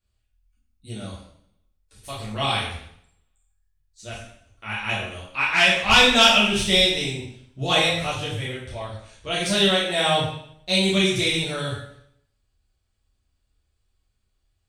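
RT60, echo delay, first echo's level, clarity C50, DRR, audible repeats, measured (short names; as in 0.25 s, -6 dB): 0.65 s, none, none, 2.0 dB, -8.5 dB, none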